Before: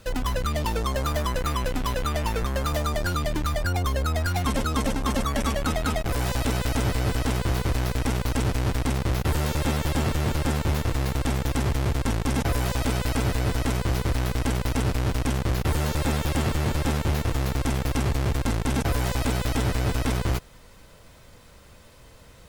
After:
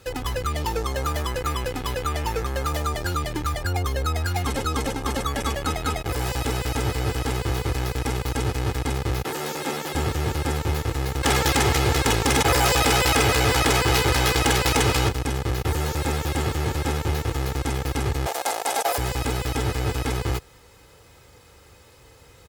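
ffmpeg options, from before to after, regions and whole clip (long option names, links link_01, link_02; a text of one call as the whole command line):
ffmpeg -i in.wav -filter_complex "[0:a]asettb=1/sr,asplit=3[link_01][link_02][link_03];[link_01]atrim=end=9.244[link_04];[link_02]atrim=start=9.24:end=9.94,asetpts=PTS-STARTPTS,afade=type=in:duration=0.004:curve=qsin,afade=type=out:start_time=0.696:duration=0.004:curve=qsin,highpass=frequency=180:width=0.5412,highpass=frequency=180:width=1.3066,bandreject=frequency=60:width_type=h:width=6,bandreject=frequency=120:width_type=h:width=6,bandreject=frequency=180:width_type=h:width=6,bandreject=frequency=240:width_type=h:width=6,bandreject=frequency=300:width_type=h:width=6,bandreject=frequency=360:width_type=h:width=6,bandreject=frequency=420:width_type=h:width=6,bandreject=frequency=480:width_type=h:width=6[link_05];[link_03]atrim=start=9.936[link_06];[link_04][link_05]acrossfade=duration=0.004:curve1=hsin:curve2=qsin[link_07];[link_07][link_06]acrossfade=duration=0.004:curve1=qsin:curve2=hsin,asettb=1/sr,asplit=3[link_08][link_09][link_10];[link_08]atrim=end=11.234[link_11];[link_09]atrim=start=11.23:end=15.09,asetpts=PTS-STARTPTS,afade=type=in:duration=0.004:curve=qsin,afade=type=out:start_time=3.856:duration=0.004:curve=qsin,asplit=2[link_12][link_13];[link_13]highpass=frequency=720:poles=1,volume=14dB,asoftclip=type=tanh:threshold=-15dB[link_14];[link_12][link_14]amix=inputs=2:normalize=0,lowpass=frequency=5800:poles=1,volume=-6dB,aeval=exprs='0.168*sin(PI/2*2*val(0)/0.168)':channel_layout=same[link_15];[link_10]atrim=start=15.086[link_16];[link_11][link_15]acrossfade=duration=0.004:curve1=hsin:curve2=qsin[link_17];[link_17][link_16]acrossfade=duration=0.004:curve1=qsin:curve2=hsin,asettb=1/sr,asplit=3[link_18][link_19][link_20];[link_18]atrim=end=18.264[link_21];[link_19]atrim=start=18.26:end=18.98,asetpts=PTS-STARTPTS,afade=type=in:duration=0.004:curve=qsin,afade=type=out:start_time=0.716:duration=0.004:curve=qsin,highpass=frequency=660:width_type=q:width=4.6,highshelf=frequency=4600:gain=10[link_22];[link_20]atrim=start=18.976[link_23];[link_21][link_22]acrossfade=duration=0.004:curve1=hsin:curve2=qsin[link_24];[link_24][link_23]acrossfade=duration=0.004:curve1=qsin:curve2=hsin,highpass=67,aecho=1:1:2.4:0.52" out.wav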